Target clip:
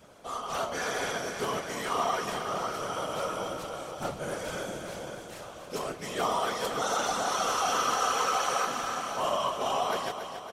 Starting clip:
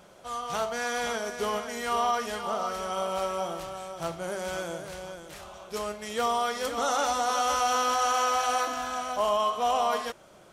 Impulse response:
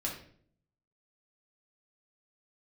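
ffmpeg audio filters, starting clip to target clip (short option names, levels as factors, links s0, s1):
-af "afftfilt=real='hypot(re,im)*cos(2*PI*random(0))':imag='hypot(re,im)*sin(2*PI*random(1))':win_size=512:overlap=0.75,adynamicequalizer=threshold=0.00562:dfrequency=730:dqfactor=1.2:tfrequency=730:tqfactor=1.2:attack=5:release=100:ratio=0.375:range=2:mode=cutabove:tftype=bell,aecho=1:1:279|558|837|1116|1395|1674|1953:0.355|0.206|0.119|0.0692|0.0402|0.0233|0.0135,volume=1.78"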